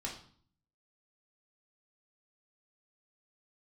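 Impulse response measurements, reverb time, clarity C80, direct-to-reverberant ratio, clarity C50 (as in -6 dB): 0.50 s, 11.5 dB, -3.0 dB, 7.5 dB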